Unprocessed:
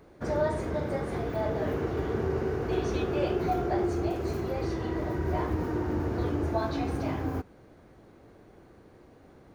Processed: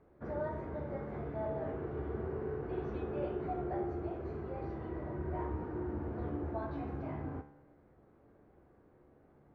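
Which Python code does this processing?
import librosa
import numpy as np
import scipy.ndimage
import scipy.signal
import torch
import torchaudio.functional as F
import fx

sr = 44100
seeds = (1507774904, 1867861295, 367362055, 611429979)

y = scipy.signal.sosfilt(scipy.signal.butter(2, 1700.0, 'lowpass', fs=sr, output='sos'), x)
y = fx.comb_fb(y, sr, f0_hz=72.0, decay_s=0.83, harmonics='all', damping=0.0, mix_pct=70)
y = y * librosa.db_to_amplitude(-1.5)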